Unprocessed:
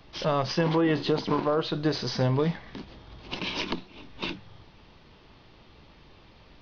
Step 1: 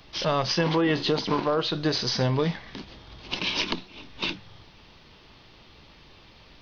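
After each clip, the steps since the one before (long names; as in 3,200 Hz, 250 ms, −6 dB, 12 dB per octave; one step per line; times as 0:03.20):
high-shelf EQ 2,100 Hz +8 dB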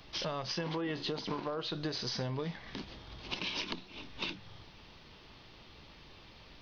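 downward compressor 4 to 1, threshold −32 dBFS, peak gain reduction 11 dB
level −3 dB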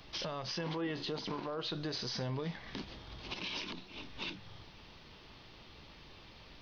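brickwall limiter −29.5 dBFS, peak gain reduction 9 dB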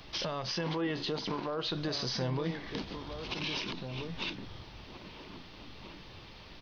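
slap from a distant wall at 280 metres, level −7 dB
level +4 dB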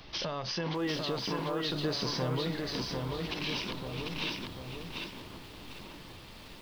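feedback echo at a low word length 745 ms, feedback 35%, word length 9 bits, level −3 dB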